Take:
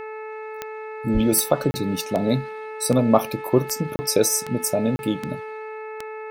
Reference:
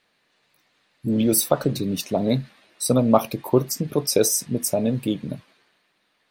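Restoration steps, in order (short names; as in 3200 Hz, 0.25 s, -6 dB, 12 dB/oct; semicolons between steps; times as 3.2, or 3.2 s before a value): de-click; de-hum 434.7 Hz, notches 6; 1.13–1.25 HPF 140 Hz 24 dB/oct; interpolate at 1.71/3.96/4.96, 30 ms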